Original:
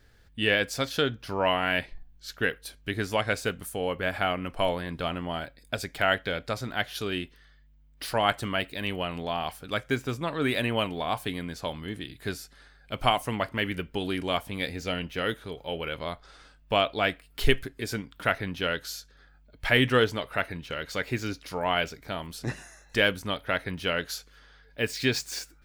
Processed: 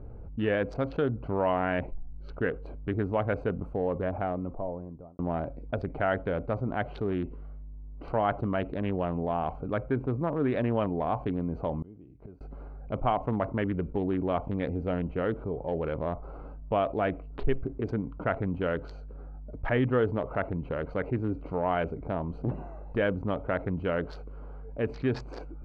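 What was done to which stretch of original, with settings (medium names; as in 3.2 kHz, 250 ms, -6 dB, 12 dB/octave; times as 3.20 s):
3.57–5.19 s: studio fade out
7.02–8.07 s: transient shaper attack -9 dB, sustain +1 dB
11.82–12.41 s: inverted gate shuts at -36 dBFS, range -35 dB
whole clip: local Wiener filter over 25 samples; low-pass 1.1 kHz 12 dB/octave; level flattener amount 50%; trim -4.5 dB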